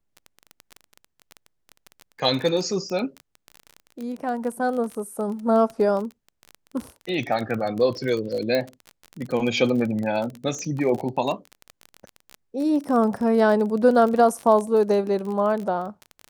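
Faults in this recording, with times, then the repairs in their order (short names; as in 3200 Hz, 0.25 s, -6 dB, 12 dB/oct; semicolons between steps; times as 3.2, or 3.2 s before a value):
crackle 25/s -27 dBFS
8.55 pop -12 dBFS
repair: de-click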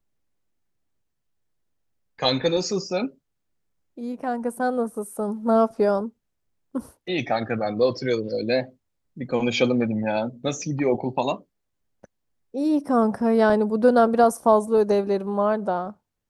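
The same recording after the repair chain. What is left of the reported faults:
none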